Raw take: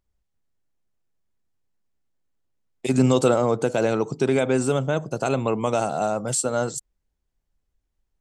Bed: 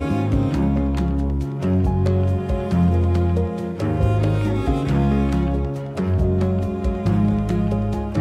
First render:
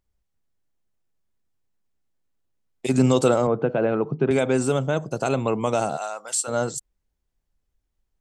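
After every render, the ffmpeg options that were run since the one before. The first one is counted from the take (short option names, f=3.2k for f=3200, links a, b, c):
-filter_complex "[0:a]asettb=1/sr,asplit=3[a][b][c];[a]atrim=end=3.474[d];[b]atrim=start=3.47:end=4.31,asetpts=PTS-STARTPTS,afade=t=in:d=0.004:c=qsin,afade=t=out:st=0.836:d=0.004:c=qsin,highpass=120,equalizer=f=150:t=q:w=4:g=8,equalizer=f=900:t=q:w=4:g=-3,equalizer=f=2.1k:t=q:w=4:g=-6,lowpass=f=2.5k:w=0.5412,lowpass=f=2.5k:w=1.3066[e];[c]atrim=start=4.306[f];[d][e]acrossfade=d=0.004:c1=hsin:c2=qsin[g];[g][f]acrossfade=d=0.004:c1=qsin:c2=hsin,asplit=3[h][i][j];[h]afade=t=out:st=5.96:d=0.02[k];[i]highpass=1k,afade=t=in:st=5.96:d=0.02,afade=t=out:st=6.47:d=0.02[l];[j]afade=t=in:st=6.47:d=0.02[m];[k][l][m]amix=inputs=3:normalize=0"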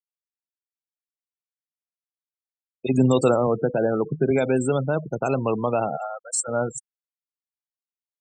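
-af "afftfilt=real='re*gte(hypot(re,im),0.0562)':imag='im*gte(hypot(re,im),0.0562)':win_size=1024:overlap=0.75"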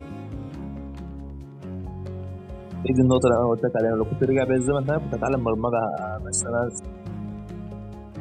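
-filter_complex "[1:a]volume=-15.5dB[a];[0:a][a]amix=inputs=2:normalize=0"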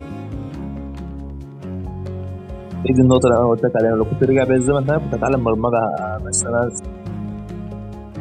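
-af "volume=6dB,alimiter=limit=-2dB:level=0:latency=1"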